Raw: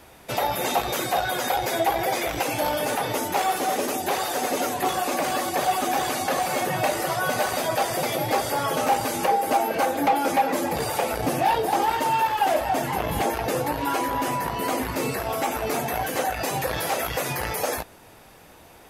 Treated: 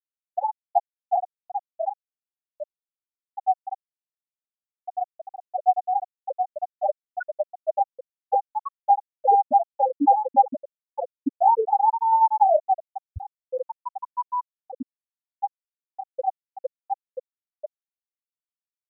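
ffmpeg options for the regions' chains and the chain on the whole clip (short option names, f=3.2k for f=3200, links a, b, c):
-filter_complex "[0:a]asettb=1/sr,asplit=3[a][b][c];[a]atrim=end=1.504[d];[b]atrim=start=1.5:end=4.9,asetpts=PTS-STARTPTS,afade=t=in:d=0.004:c=qsin,afade=t=out:st=3.396:d=0.004:c=qsin,flanger=delay=15.5:depth=7.6:speed=1.2,equalizer=f=6.7k:w=1:g=8[e];[c]atrim=start=4.896[f];[d][e]acrossfade=d=0.004:c1=hsin:c2=qsin[g];[g][f]acrossfade=d=0.004:c1=qsin:c2=hsin,anlmdn=10,afftfilt=real='re*gte(hypot(re,im),0.562)':imag='im*gte(hypot(re,im),0.562)':win_size=1024:overlap=0.75,volume=5.5dB"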